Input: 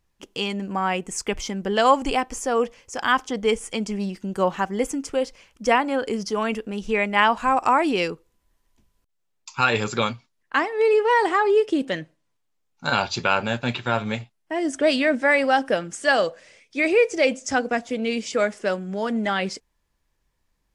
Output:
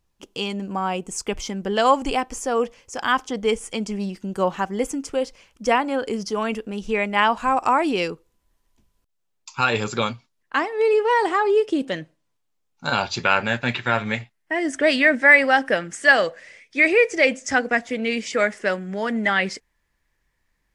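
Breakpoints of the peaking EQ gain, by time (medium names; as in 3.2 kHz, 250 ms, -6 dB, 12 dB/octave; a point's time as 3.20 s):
peaking EQ 1.9 kHz 0.6 oct
0.70 s -4.5 dB
0.94 s -11.5 dB
1.46 s -1.5 dB
12.98 s -1.5 dB
13.38 s +10 dB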